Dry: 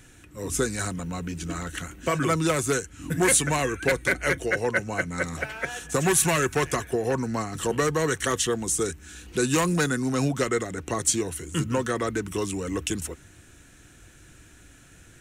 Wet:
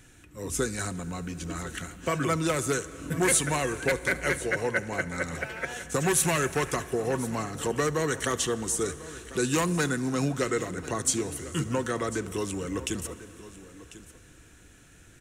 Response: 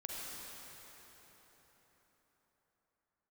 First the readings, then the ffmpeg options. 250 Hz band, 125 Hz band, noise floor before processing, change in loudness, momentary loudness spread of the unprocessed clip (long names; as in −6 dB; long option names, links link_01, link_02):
−3.0 dB, −3.0 dB, −52 dBFS, −3.0 dB, 11 LU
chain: -filter_complex "[0:a]aecho=1:1:1046:0.15,asplit=2[link_01][link_02];[1:a]atrim=start_sample=2205,adelay=72[link_03];[link_02][link_03]afir=irnorm=-1:irlink=0,volume=-15.5dB[link_04];[link_01][link_04]amix=inputs=2:normalize=0,volume=-3dB"